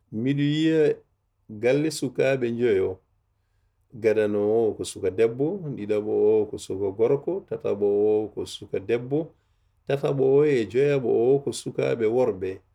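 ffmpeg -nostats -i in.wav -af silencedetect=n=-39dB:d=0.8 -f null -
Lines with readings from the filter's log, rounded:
silence_start: 2.94
silence_end: 3.94 | silence_duration: 1.00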